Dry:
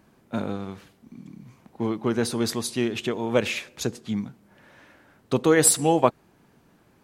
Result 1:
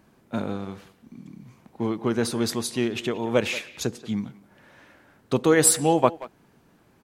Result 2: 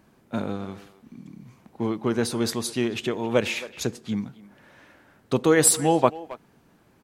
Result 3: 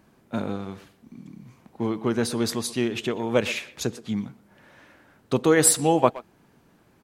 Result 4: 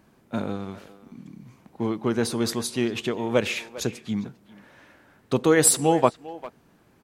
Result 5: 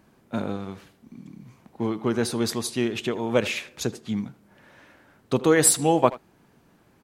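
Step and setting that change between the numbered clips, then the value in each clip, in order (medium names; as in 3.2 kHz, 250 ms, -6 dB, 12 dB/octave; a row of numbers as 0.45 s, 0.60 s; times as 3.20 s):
speakerphone echo, time: 180 ms, 270 ms, 120 ms, 400 ms, 80 ms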